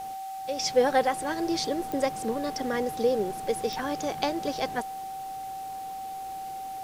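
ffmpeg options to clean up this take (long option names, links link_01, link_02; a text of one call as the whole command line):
ffmpeg -i in.wav -af "adeclick=threshold=4,bandreject=frequency=770:width=30,afwtdn=0.0028" out.wav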